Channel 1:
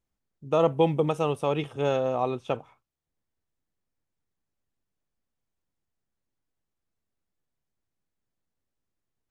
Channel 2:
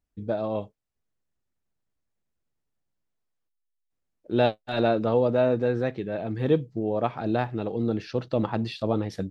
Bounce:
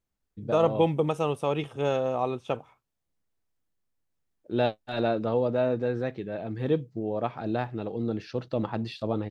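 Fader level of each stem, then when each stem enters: -1.0, -3.5 dB; 0.00, 0.20 s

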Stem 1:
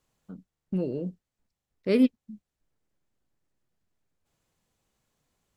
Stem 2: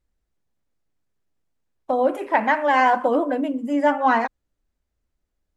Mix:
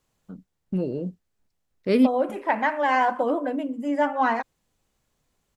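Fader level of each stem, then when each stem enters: +2.5, -4.0 dB; 0.00, 0.15 s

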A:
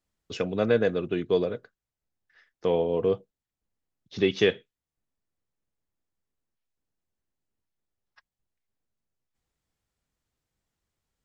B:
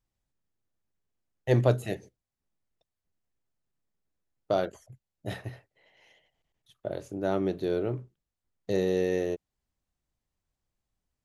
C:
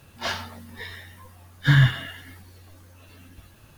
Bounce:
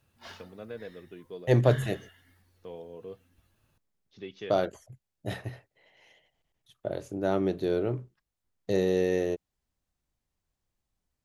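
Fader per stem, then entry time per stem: -18.5, +1.0, -18.5 dB; 0.00, 0.00, 0.00 s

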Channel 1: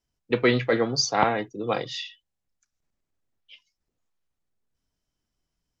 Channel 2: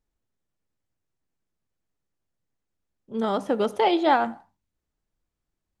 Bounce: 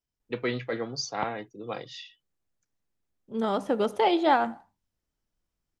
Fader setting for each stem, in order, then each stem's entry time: -9.0, -2.0 dB; 0.00, 0.20 s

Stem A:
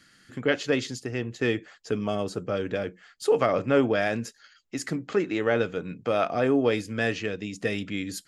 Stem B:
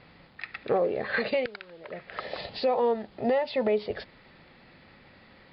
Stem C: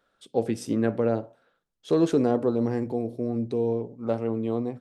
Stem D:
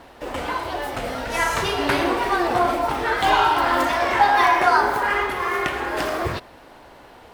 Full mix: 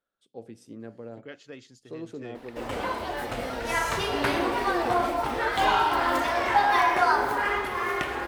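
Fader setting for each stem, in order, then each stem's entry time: -19.0, -13.0, -17.0, -5.0 dB; 0.80, 2.05, 0.00, 2.35 s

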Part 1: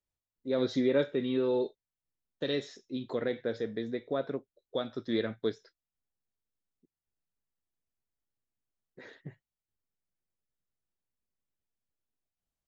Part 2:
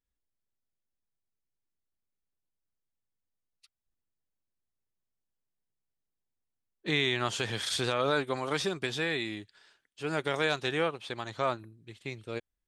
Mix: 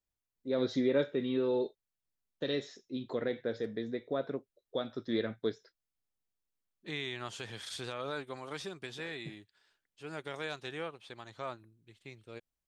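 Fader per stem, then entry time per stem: -2.0, -10.5 dB; 0.00, 0.00 s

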